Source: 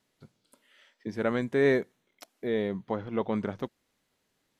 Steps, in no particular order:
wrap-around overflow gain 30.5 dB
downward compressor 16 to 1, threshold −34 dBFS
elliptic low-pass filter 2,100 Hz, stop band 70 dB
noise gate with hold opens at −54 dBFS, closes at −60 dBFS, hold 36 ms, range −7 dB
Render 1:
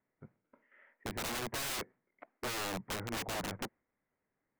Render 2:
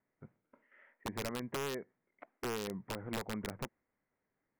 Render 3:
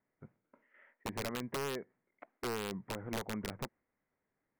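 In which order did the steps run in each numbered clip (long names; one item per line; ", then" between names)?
noise gate with hold, then elliptic low-pass filter, then wrap-around overflow, then downward compressor
downward compressor, then noise gate with hold, then elliptic low-pass filter, then wrap-around overflow
elliptic low-pass filter, then noise gate with hold, then downward compressor, then wrap-around overflow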